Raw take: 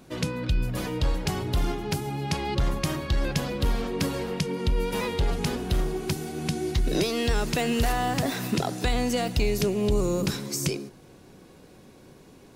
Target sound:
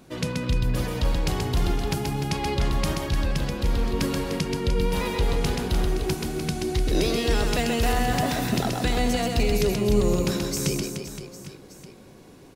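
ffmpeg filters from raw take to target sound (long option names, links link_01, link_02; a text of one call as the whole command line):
ffmpeg -i in.wav -filter_complex "[0:a]asettb=1/sr,asplit=3[link_01][link_02][link_03];[link_01]atrim=end=2.934[link_04];[link_02]atrim=start=2.93:end=3.87,asetpts=PTS-STARTPTS,afade=type=in:duration=0.004:curve=qsin,afade=type=out:start_time=0.936:duration=0.004:curve=qsin,acrossover=split=130[link_05][link_06];[link_06]acompressor=threshold=-30dB:ratio=6[link_07];[link_05][link_07]amix=inputs=2:normalize=0[link_08];[link_03]atrim=start=3.866[link_09];[link_04][link_08]acrossfade=duration=0.004:curve1=hsin:curve2=qsin[link_10];[link_10][link_09]acrossfade=duration=0.004:curve1=qsin:curve2=hsin,aecho=1:1:130|299|518.7|804.3|1176:0.631|0.398|0.251|0.158|0.1" out.wav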